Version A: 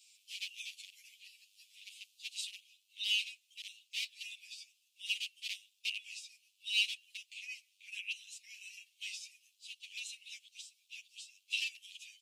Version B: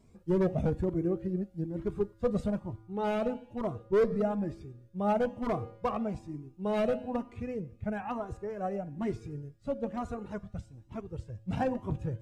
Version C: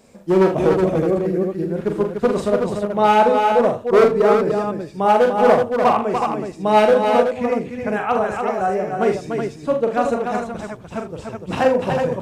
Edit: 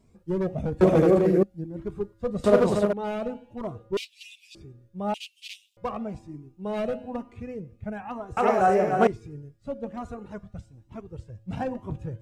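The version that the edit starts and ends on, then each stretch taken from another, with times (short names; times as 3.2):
B
0.81–1.43 from C
2.44–2.93 from C
3.97–4.55 from A
5.14–5.77 from A
8.37–9.07 from C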